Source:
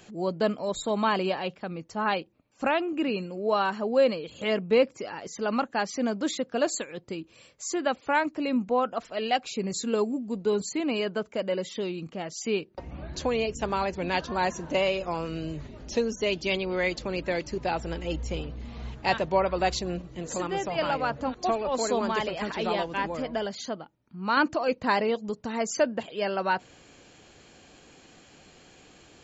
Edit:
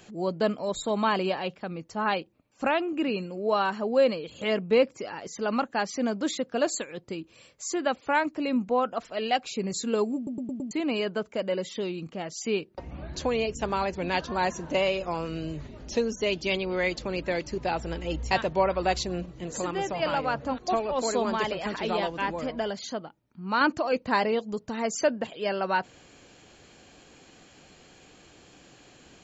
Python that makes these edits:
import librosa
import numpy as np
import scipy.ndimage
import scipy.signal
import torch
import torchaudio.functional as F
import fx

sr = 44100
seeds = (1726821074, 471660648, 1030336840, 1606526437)

y = fx.edit(x, sr, fx.stutter_over(start_s=10.16, slice_s=0.11, count=5),
    fx.cut(start_s=18.31, length_s=0.76), tone=tone)